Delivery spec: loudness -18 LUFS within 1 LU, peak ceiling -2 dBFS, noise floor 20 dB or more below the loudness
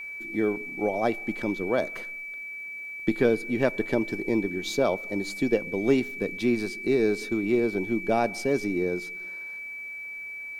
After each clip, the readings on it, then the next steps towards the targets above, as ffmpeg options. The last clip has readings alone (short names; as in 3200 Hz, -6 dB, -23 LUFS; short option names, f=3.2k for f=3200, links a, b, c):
steady tone 2300 Hz; tone level -35 dBFS; loudness -27.5 LUFS; peak -8.5 dBFS; loudness target -18.0 LUFS
-> -af "bandreject=f=2.3k:w=30"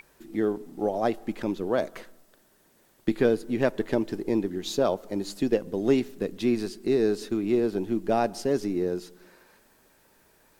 steady tone none; loudness -27.5 LUFS; peak -9.0 dBFS; loudness target -18.0 LUFS
-> -af "volume=9.5dB,alimiter=limit=-2dB:level=0:latency=1"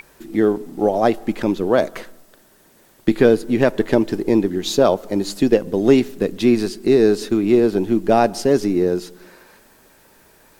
loudness -18.0 LUFS; peak -2.0 dBFS; noise floor -53 dBFS